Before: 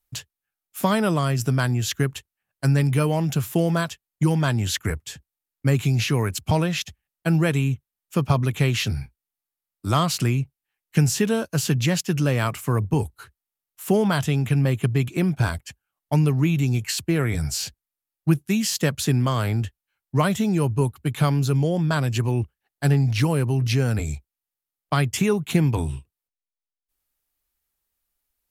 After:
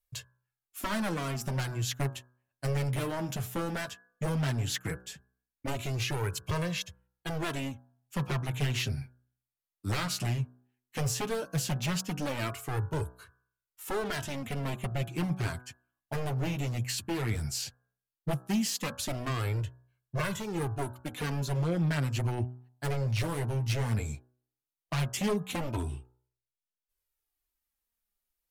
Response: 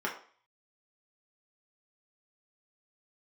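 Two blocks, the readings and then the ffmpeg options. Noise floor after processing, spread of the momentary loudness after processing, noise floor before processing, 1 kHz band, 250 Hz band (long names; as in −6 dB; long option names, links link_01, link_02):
below −85 dBFS, 10 LU, below −85 dBFS, −9.0 dB, −12.0 dB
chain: -af "aeval=exprs='0.133*(abs(mod(val(0)/0.133+3,4)-2)-1)':channel_layout=same,bandreject=frequency=62.28:width_type=h:width=4,bandreject=frequency=124.56:width_type=h:width=4,bandreject=frequency=186.84:width_type=h:width=4,bandreject=frequency=249.12:width_type=h:width=4,bandreject=frequency=311.4:width_type=h:width=4,bandreject=frequency=373.68:width_type=h:width=4,bandreject=frequency=435.96:width_type=h:width=4,bandreject=frequency=498.24:width_type=h:width=4,bandreject=frequency=560.52:width_type=h:width=4,bandreject=frequency=622.8:width_type=h:width=4,bandreject=frequency=685.08:width_type=h:width=4,bandreject=frequency=747.36:width_type=h:width=4,bandreject=frequency=809.64:width_type=h:width=4,bandreject=frequency=871.92:width_type=h:width=4,bandreject=frequency=934.2:width_type=h:width=4,bandreject=frequency=996.48:width_type=h:width=4,bandreject=frequency=1058.76:width_type=h:width=4,bandreject=frequency=1121.04:width_type=h:width=4,bandreject=frequency=1183.32:width_type=h:width=4,bandreject=frequency=1245.6:width_type=h:width=4,bandreject=frequency=1307.88:width_type=h:width=4,bandreject=frequency=1370.16:width_type=h:width=4,bandreject=frequency=1432.44:width_type=h:width=4,bandreject=frequency=1494.72:width_type=h:width=4,bandreject=frequency=1557:width_type=h:width=4,bandreject=frequency=1619.28:width_type=h:width=4,bandreject=frequency=1681.56:width_type=h:width=4,flanger=delay=1.8:depth=7.9:regen=-11:speed=0.15:shape=sinusoidal,volume=-4dB"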